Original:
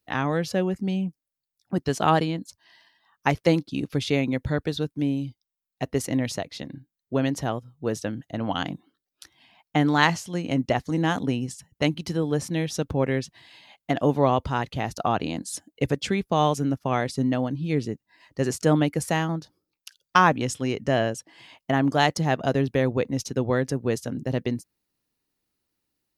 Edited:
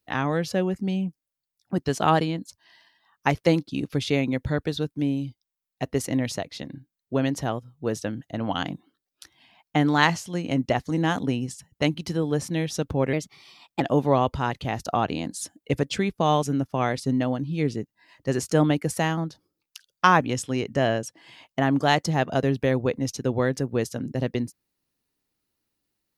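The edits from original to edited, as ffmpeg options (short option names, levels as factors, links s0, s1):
-filter_complex "[0:a]asplit=3[s0][s1][s2];[s0]atrim=end=13.134[s3];[s1]atrim=start=13.13:end=13.92,asetpts=PTS-STARTPTS,asetrate=51597,aresample=44100[s4];[s2]atrim=start=13.916[s5];[s3][s4]acrossfade=d=0.004:c1=hsin:c2=hsin[s6];[s6][s5]acrossfade=d=0.004:c1=hsin:c2=hsin"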